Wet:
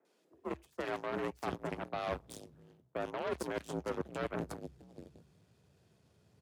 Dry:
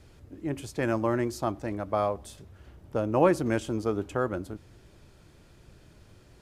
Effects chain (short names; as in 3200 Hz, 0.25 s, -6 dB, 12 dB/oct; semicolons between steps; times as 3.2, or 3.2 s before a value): limiter -17.5 dBFS, peak gain reduction 9 dB; three bands offset in time mids, highs, lows 50/650 ms, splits 200/1700 Hz; added harmonics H 2 -11 dB, 7 -16 dB, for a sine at -17 dBFS; frequency shift +58 Hz; reverse; compressor 6:1, threshold -42 dBFS, peak gain reduction 17.5 dB; reverse; gain +7 dB